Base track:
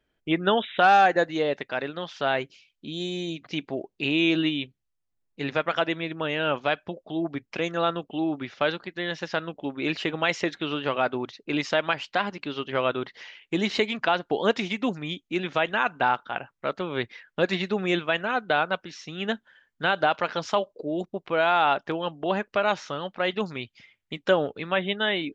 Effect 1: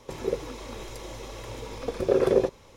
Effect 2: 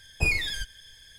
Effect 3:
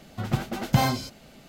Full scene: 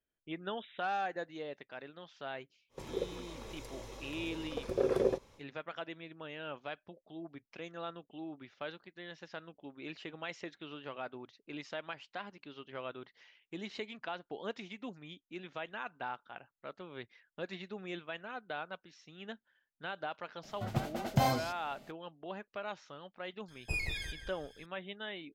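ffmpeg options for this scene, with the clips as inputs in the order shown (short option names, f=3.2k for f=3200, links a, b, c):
-filter_complex "[0:a]volume=-17.5dB[a];[3:a]equalizer=f=650:w=2.4:g=7.5[b];[2:a]asplit=2[c][d];[d]adelay=174,lowpass=f=2.1k:p=1,volume=-3dB,asplit=2[e][f];[f]adelay=174,lowpass=f=2.1k:p=1,volume=0.36,asplit=2[g][h];[h]adelay=174,lowpass=f=2.1k:p=1,volume=0.36,asplit=2[i][j];[j]adelay=174,lowpass=f=2.1k:p=1,volume=0.36,asplit=2[k][l];[l]adelay=174,lowpass=f=2.1k:p=1,volume=0.36[m];[c][e][g][i][k][m]amix=inputs=6:normalize=0[n];[1:a]atrim=end=2.76,asetpts=PTS-STARTPTS,volume=-8.5dB,afade=t=in:d=0.1,afade=t=out:st=2.66:d=0.1,adelay=2690[o];[b]atrim=end=1.48,asetpts=PTS-STARTPTS,volume=-8.5dB,afade=t=in:d=0.004:c=hsin,afade=t=out:st=1.476:d=0.004:c=hsin,adelay=20430[p];[n]atrim=end=1.18,asetpts=PTS-STARTPTS,volume=-11.5dB,afade=t=in:d=0.004:c=hsin,afade=t=out:st=1.176:d=0.004:c=hsin,adelay=23480[q];[a][o][p][q]amix=inputs=4:normalize=0"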